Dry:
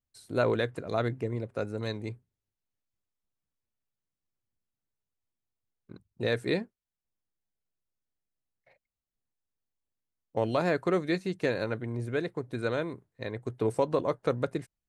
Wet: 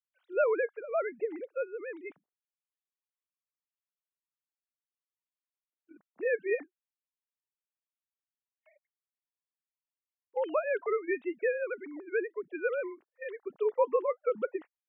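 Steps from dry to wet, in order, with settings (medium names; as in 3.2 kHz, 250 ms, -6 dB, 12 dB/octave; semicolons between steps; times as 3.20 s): formants replaced by sine waves; high-pass 360 Hz 6 dB/octave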